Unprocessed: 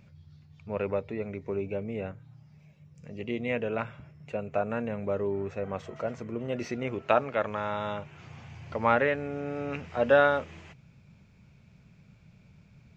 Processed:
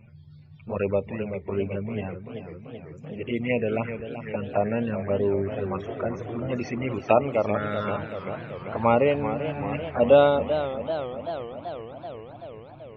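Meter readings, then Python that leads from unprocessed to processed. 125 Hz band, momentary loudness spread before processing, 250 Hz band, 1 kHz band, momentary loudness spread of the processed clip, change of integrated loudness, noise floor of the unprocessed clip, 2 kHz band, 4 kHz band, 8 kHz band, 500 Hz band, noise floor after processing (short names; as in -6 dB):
+7.0 dB, 18 LU, +6.0 dB, +3.0 dB, 18 LU, +4.0 dB, -58 dBFS, -1.5 dB, +4.5 dB, n/a, +5.5 dB, -47 dBFS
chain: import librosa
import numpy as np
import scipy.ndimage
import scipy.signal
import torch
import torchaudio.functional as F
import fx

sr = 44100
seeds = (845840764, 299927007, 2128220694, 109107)

y = fx.env_flanger(x, sr, rest_ms=9.8, full_db=-25.5)
y = fx.spec_topn(y, sr, count=64)
y = fx.echo_warbled(y, sr, ms=387, feedback_pct=70, rate_hz=2.8, cents=127, wet_db=-10.0)
y = F.gain(torch.from_numpy(y), 7.0).numpy()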